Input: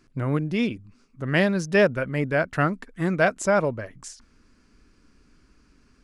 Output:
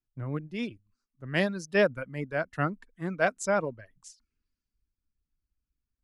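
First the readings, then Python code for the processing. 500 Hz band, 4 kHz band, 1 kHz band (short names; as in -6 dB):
-6.0 dB, -5.0 dB, -5.5 dB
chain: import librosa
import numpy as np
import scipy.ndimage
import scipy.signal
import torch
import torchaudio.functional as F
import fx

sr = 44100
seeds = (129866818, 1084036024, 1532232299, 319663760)

y = fx.dereverb_blind(x, sr, rt60_s=0.65)
y = fx.band_widen(y, sr, depth_pct=70)
y = F.gain(torch.from_numpy(y), -8.0).numpy()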